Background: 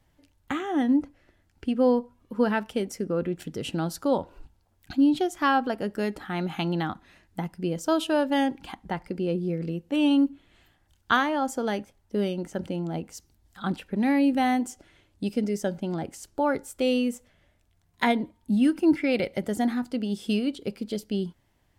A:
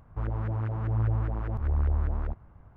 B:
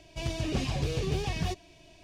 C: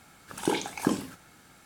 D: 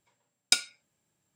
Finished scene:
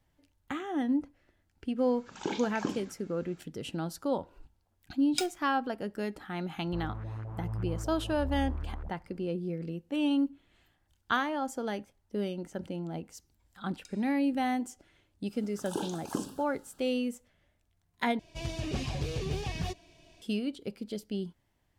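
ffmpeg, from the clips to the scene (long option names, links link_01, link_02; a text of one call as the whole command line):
ffmpeg -i bed.wav -i cue0.wav -i cue1.wav -i cue2.wav -i cue3.wav -filter_complex "[3:a]asplit=2[link_01][link_02];[4:a]asplit=2[link_03][link_04];[0:a]volume=-6.5dB[link_05];[link_01]aresample=16000,aresample=44100[link_06];[link_03]acrusher=bits=6:dc=4:mix=0:aa=0.000001[link_07];[link_04]acompressor=threshold=-41dB:ratio=6:attack=3.2:release=140:knee=1:detection=peak[link_08];[link_02]asuperstop=centerf=2100:order=4:qfactor=1.7[link_09];[link_05]asplit=2[link_10][link_11];[link_10]atrim=end=18.194[link_12];[2:a]atrim=end=2.03,asetpts=PTS-STARTPTS,volume=-3.5dB[link_13];[link_11]atrim=start=20.216[link_14];[link_06]atrim=end=1.65,asetpts=PTS-STARTPTS,volume=-7dB,afade=type=in:duration=0.004:curve=hsin,afade=type=out:start_time=1.646:duration=0.004:curve=hsin,adelay=1780[link_15];[link_07]atrim=end=1.35,asetpts=PTS-STARTPTS,volume=-9.5dB,afade=type=in:duration=0.004:curve=hsin,afade=type=out:start_time=1.346:duration=0.004:curve=hsin,adelay=4660[link_16];[1:a]atrim=end=2.76,asetpts=PTS-STARTPTS,volume=-9dB,afade=type=in:duration=0.004:curve=hsin,afade=type=out:start_time=2.756:duration=0.004:curve=hsin,adelay=6560[link_17];[link_08]atrim=end=1.35,asetpts=PTS-STARTPTS,volume=-11dB,afade=type=in:duration=0.004:curve=hsin,afade=type=out:start_time=1.346:duration=0.004:curve=hsin,adelay=13330[link_18];[link_09]atrim=end=1.65,asetpts=PTS-STARTPTS,volume=-7.5dB,afade=type=in:duration=0.05,afade=type=out:start_time=1.6:duration=0.05,adelay=15280[link_19];[link_12][link_13]acrossfade=duration=0.004:curve1=hsin:curve2=hsin[link_20];[link_20][link_14]acrossfade=duration=0.004:curve1=hsin:curve2=hsin[link_21];[link_21][link_15][link_16][link_17][link_18][link_19]amix=inputs=6:normalize=0" out.wav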